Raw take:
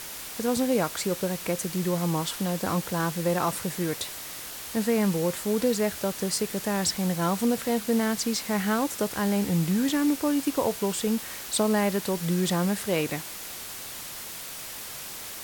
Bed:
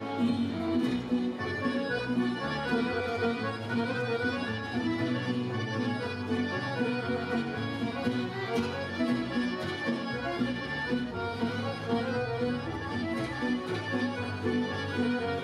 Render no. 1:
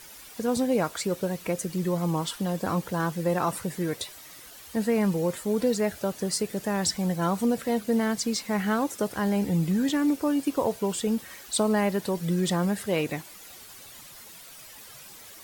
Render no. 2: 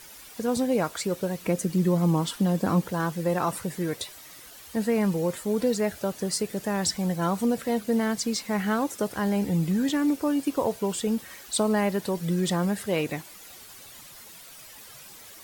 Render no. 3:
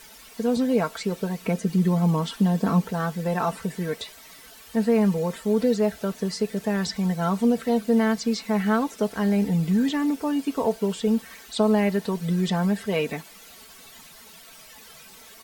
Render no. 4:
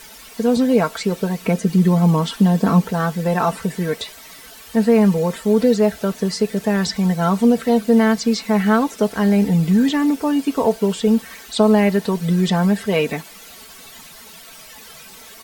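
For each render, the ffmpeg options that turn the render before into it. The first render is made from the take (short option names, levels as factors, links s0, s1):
-af "afftdn=nr=11:nf=-39"
-filter_complex "[0:a]asettb=1/sr,asplit=3[s0][s1][s2];[s0]atrim=end=1.434[s3];[s1]atrim=start=1.43:end=2.88,asetpts=PTS-STARTPTS,afade=t=in:d=0.004:c=qsin,afade=t=out:st=1.446:d=0.004:c=qsin,equalizer=f=220:w=0.95:g=6.5[s4];[s2]atrim=start=2.876[s5];[s3][s4]acrossfade=d=0.004:c1=hsin:c2=qsin[s6];[s6][s5]acrossfade=d=0.004:c1=qsin:c2=hsin"
-filter_complex "[0:a]acrossover=split=5400[s0][s1];[s1]acompressor=threshold=0.00398:ratio=4:attack=1:release=60[s2];[s0][s2]amix=inputs=2:normalize=0,aecho=1:1:4.5:0.68"
-af "volume=2.11"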